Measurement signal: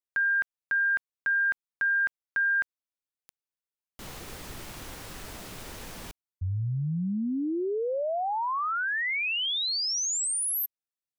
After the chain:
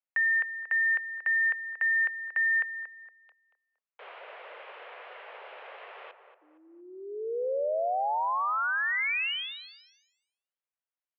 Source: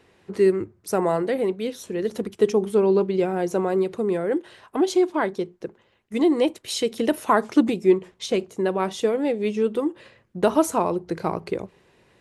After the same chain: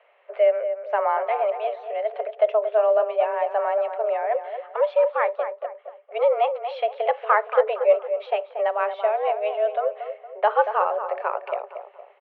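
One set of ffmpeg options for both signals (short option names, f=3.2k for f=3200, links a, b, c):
-filter_complex "[0:a]asplit=2[a][b];[b]adelay=232,lowpass=f=1.4k:p=1,volume=-8.5dB,asplit=2[c][d];[d]adelay=232,lowpass=f=1.4k:p=1,volume=0.41,asplit=2[e][f];[f]adelay=232,lowpass=f=1.4k:p=1,volume=0.41,asplit=2[g][h];[h]adelay=232,lowpass=f=1.4k:p=1,volume=0.41,asplit=2[i][j];[j]adelay=232,lowpass=f=1.4k:p=1,volume=0.41[k];[a][c][e][g][i][k]amix=inputs=6:normalize=0,highpass=f=260:t=q:w=0.5412,highpass=f=260:t=q:w=1.307,lowpass=f=2.7k:t=q:w=0.5176,lowpass=f=2.7k:t=q:w=0.7071,lowpass=f=2.7k:t=q:w=1.932,afreqshift=210"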